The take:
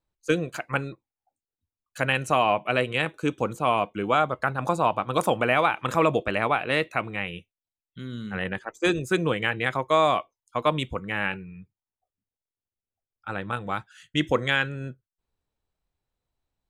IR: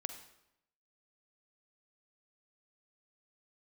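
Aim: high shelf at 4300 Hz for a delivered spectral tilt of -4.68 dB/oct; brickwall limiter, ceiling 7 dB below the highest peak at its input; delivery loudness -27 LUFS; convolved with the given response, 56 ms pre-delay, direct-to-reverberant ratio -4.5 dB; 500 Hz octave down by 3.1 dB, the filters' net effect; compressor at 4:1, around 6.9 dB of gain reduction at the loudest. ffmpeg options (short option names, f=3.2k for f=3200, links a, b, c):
-filter_complex "[0:a]equalizer=f=500:t=o:g=-4,highshelf=f=4.3k:g=4,acompressor=threshold=-26dB:ratio=4,alimiter=limit=-19dB:level=0:latency=1,asplit=2[a][b];[1:a]atrim=start_sample=2205,adelay=56[c];[b][c]afir=irnorm=-1:irlink=0,volume=5.5dB[d];[a][d]amix=inputs=2:normalize=0,volume=1dB"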